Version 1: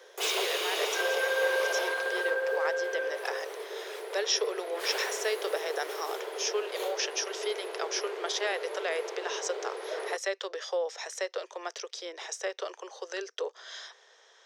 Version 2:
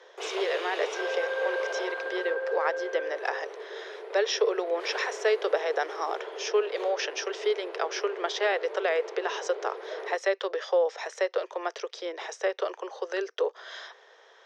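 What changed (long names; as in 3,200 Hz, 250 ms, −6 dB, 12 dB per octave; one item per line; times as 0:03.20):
speech +8.0 dB
master: add head-to-tape spacing loss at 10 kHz 23 dB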